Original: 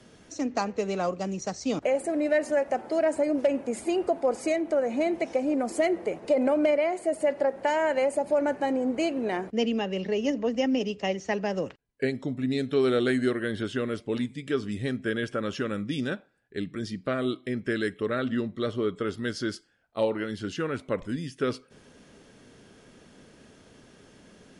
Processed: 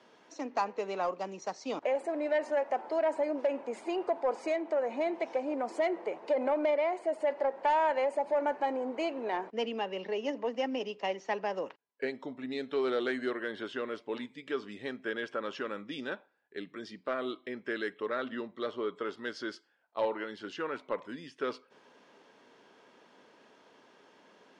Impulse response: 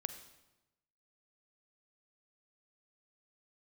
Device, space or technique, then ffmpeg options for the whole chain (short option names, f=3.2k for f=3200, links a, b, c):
intercom: -af "highpass=370,lowpass=4.4k,equalizer=f=950:t=o:w=0.42:g=9,asoftclip=type=tanh:threshold=-15.5dB,volume=-4dB"